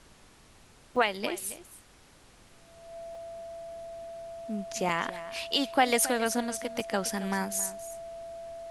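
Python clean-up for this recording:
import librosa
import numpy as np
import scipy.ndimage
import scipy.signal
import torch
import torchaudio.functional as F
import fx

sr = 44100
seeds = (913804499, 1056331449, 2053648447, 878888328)

y = fx.notch(x, sr, hz=670.0, q=30.0)
y = fx.fix_interpolate(y, sr, at_s=(0.96, 3.15, 4.89, 6.8), length_ms=2.6)
y = fx.noise_reduce(y, sr, print_start_s=1.83, print_end_s=2.33, reduce_db=20.0)
y = fx.fix_echo_inverse(y, sr, delay_ms=272, level_db=-15.5)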